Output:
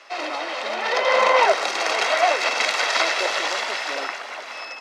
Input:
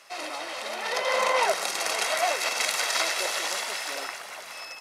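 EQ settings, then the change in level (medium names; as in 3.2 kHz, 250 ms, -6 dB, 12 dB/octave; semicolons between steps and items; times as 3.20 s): steep high-pass 210 Hz 96 dB/octave; distance through air 170 m; treble shelf 9.7 kHz +10.5 dB; +8.0 dB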